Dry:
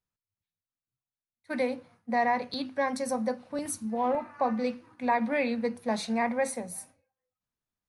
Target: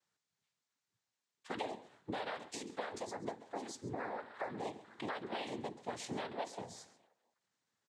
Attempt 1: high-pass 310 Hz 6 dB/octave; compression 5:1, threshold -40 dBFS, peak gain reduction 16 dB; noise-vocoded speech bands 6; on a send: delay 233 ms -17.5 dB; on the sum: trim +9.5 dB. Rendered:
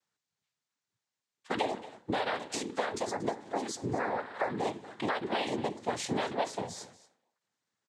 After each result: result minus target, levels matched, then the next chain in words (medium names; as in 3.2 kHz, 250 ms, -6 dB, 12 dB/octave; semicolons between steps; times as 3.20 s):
echo 98 ms late; compression: peak gain reduction -9 dB
high-pass 310 Hz 6 dB/octave; compression 5:1, threshold -40 dBFS, peak gain reduction 16 dB; noise-vocoded speech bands 6; on a send: delay 135 ms -17.5 dB; on the sum: trim +9.5 dB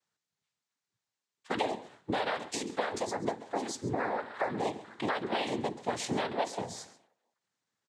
compression: peak gain reduction -9 dB
high-pass 310 Hz 6 dB/octave; compression 5:1, threshold -51.5 dBFS, peak gain reduction 25.5 dB; noise-vocoded speech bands 6; on a send: delay 135 ms -17.5 dB; on the sum: trim +9.5 dB